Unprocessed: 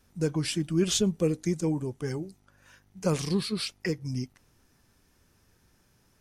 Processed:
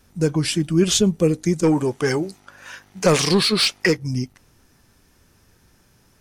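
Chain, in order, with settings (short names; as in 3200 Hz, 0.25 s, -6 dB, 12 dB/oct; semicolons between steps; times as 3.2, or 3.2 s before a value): 1.63–3.97 overdrive pedal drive 17 dB, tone 5200 Hz, clips at -13.5 dBFS; gain +8 dB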